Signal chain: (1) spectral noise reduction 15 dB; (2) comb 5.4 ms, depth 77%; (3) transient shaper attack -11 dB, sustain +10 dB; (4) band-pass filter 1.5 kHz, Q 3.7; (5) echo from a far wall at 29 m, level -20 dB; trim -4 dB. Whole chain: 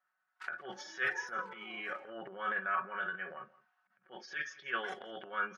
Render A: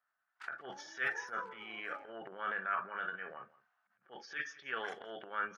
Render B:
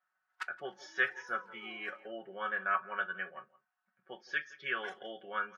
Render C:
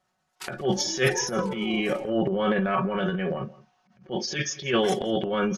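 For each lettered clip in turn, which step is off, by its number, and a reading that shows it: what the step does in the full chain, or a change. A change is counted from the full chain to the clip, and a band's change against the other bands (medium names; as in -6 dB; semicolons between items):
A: 2, loudness change -2.0 LU; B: 3, crest factor change +3.0 dB; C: 4, 2 kHz band -16.5 dB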